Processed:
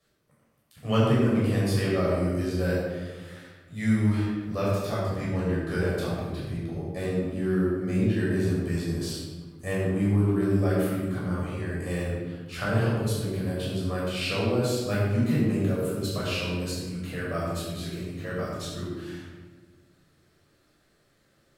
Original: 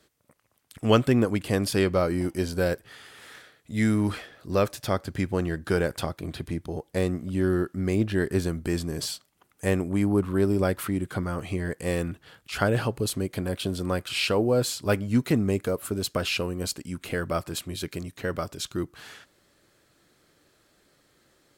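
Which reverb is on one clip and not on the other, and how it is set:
rectangular room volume 1,000 cubic metres, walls mixed, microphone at 6 metres
level −13.5 dB

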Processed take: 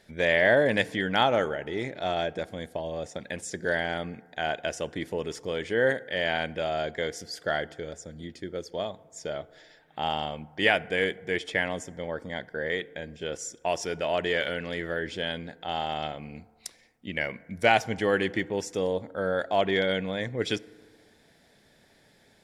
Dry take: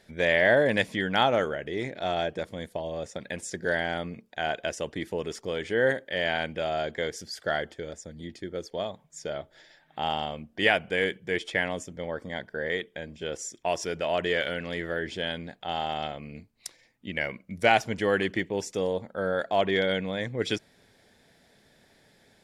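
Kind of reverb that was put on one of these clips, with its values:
feedback delay network reverb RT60 1.7 s, high-frequency decay 0.35×, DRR 19.5 dB

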